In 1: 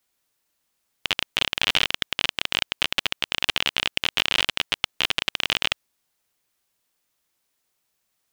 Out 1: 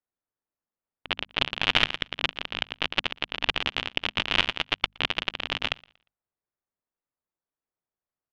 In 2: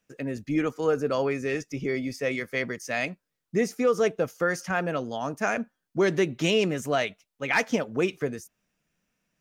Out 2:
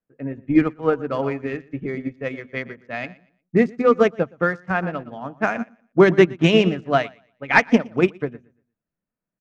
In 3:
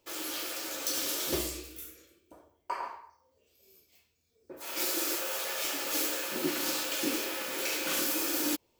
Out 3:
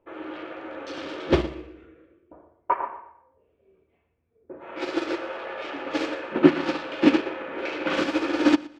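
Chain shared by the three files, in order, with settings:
adaptive Wiener filter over 9 samples
mains-hum notches 50/100/150/200/250 Hz
low-pass that shuts in the quiet parts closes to 2,000 Hz, open at −21 dBFS
dynamic equaliser 470 Hz, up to −6 dB, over −37 dBFS, Q 1.4
in parallel at −6.5 dB: soft clipping −11.5 dBFS
on the sum: head-to-tape spacing loss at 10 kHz 22 dB
on a send: repeating echo 118 ms, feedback 30%, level −11 dB
on the sum: expander for the loud parts 2.5 to 1, over −37 dBFS
normalise the peak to −1.5 dBFS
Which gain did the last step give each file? +6.5, +13.0, +18.5 decibels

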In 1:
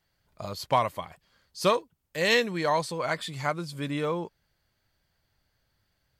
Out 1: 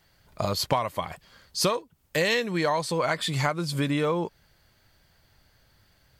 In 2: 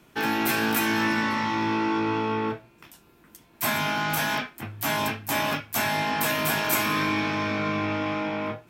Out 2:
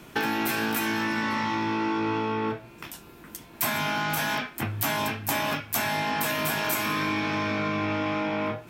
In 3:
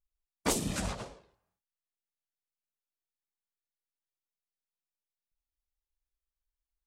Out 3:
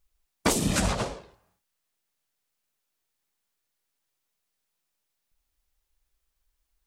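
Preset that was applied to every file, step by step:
downward compressor 6 to 1, threshold −34 dBFS
loudness normalisation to −27 LKFS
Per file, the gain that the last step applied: +11.5, +9.0, +13.5 decibels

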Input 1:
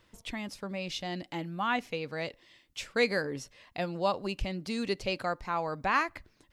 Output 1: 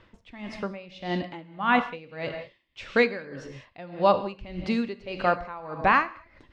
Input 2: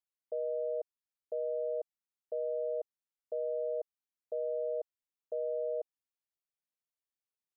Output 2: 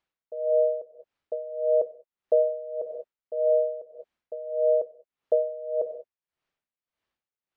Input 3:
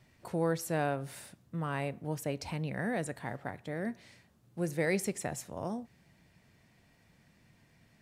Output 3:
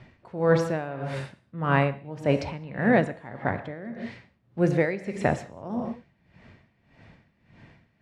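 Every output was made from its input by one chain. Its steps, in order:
low-pass filter 2,900 Hz 12 dB per octave
reverb whose tail is shaped and stops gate 230 ms flat, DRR 8.5 dB
tremolo with a sine in dB 1.7 Hz, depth 18 dB
loudness normalisation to −27 LKFS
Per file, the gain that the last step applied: +9.5, +17.0, +14.0 decibels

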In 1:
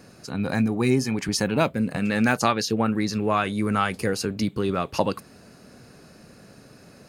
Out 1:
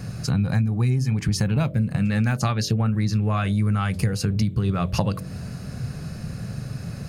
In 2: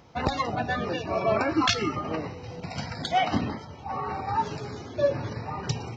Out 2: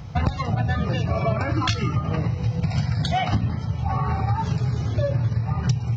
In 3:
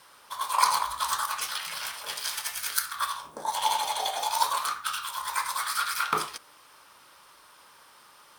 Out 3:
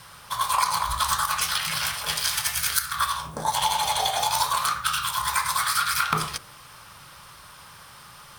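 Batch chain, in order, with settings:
low shelf with overshoot 200 Hz +13.5 dB, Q 1.5
notch filter 930 Hz, Q 20
hum removal 45.9 Hz, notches 14
downward compressor 6 to 1, threshold −28 dBFS
loudness normalisation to −24 LKFS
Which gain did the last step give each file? +8.5, +8.5, +8.5 decibels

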